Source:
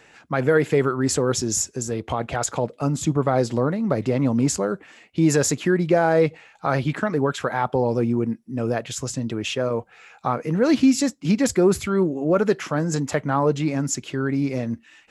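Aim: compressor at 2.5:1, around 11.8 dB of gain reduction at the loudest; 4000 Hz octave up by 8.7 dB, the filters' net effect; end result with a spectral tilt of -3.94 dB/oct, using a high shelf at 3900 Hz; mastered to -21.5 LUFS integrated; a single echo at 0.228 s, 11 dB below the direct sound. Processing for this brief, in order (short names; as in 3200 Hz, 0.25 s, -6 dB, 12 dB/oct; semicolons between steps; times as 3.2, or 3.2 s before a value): high shelf 3900 Hz +8.5 dB; bell 4000 Hz +5.5 dB; compressor 2.5:1, threshold -31 dBFS; echo 0.228 s -11 dB; gain +8.5 dB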